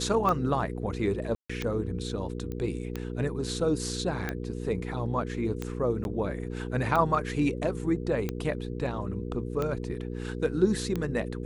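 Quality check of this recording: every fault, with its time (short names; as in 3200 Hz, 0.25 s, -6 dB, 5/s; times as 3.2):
hum 60 Hz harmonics 8 -35 dBFS
tick 45 rpm -17 dBFS
1.35–1.5 gap 0.145 s
2.52 pop -24 dBFS
6.04–6.05 gap 11 ms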